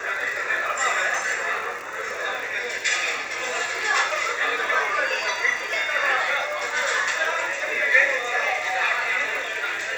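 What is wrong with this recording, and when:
surface crackle 94 per second −30 dBFS

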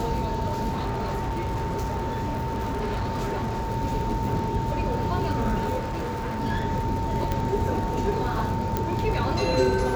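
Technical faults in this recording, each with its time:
surface crackle 75 per second −31 dBFS
whistle 900 Hz −30 dBFS
0:00.69–0:03.71: clipping −24 dBFS
0:05.78–0:06.41: clipping −26.5 dBFS
0:07.32: click −13 dBFS
0:08.77: click −11 dBFS

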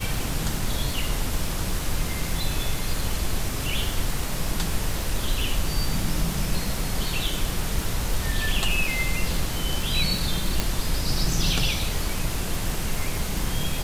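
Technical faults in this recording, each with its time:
surface crackle 160 per second −29 dBFS
0:10.60: click

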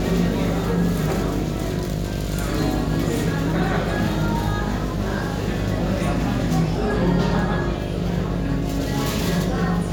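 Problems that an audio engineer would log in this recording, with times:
mains buzz 50 Hz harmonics 14 −27 dBFS

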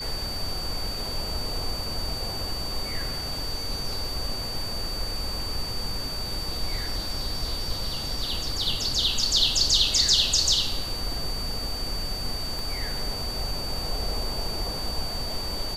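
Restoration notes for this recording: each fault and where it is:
whistle 4,600 Hz −32 dBFS
0:12.59: click

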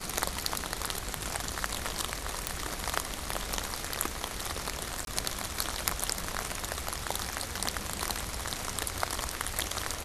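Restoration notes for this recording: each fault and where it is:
0:02.47: click
0:05.05–0:05.07: drop-out 22 ms

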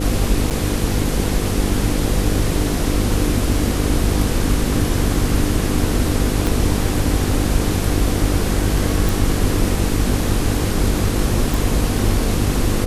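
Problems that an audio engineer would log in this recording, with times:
mains buzz 50 Hz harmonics 10 −22 dBFS
0:00.50–0:00.51: drop-out 8.1 ms
0:06.47: click
0:09.09: click
0:11.54: click

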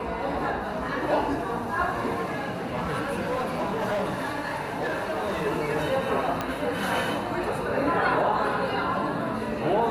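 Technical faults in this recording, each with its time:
0:02.12–0:05.45: clipping −23.5 dBFS
0:06.41: click −13 dBFS

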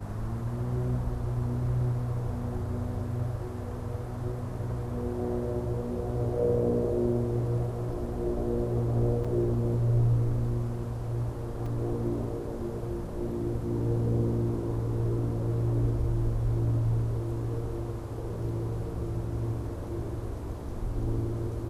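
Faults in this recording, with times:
0:09.24–0:09.25: drop-out 5.5 ms
0:11.66: drop-out 4.2 ms

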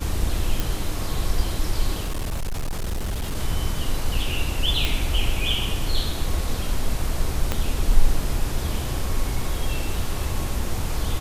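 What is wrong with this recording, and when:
0:00.60: click
0:02.02–0:03.36: clipping −22.5 dBFS
0:04.85: click
0:07.52: click −8 dBFS

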